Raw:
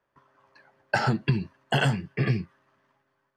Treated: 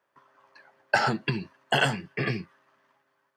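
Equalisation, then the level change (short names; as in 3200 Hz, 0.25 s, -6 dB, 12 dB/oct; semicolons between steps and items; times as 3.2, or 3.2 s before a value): HPF 400 Hz 6 dB/oct; +3.0 dB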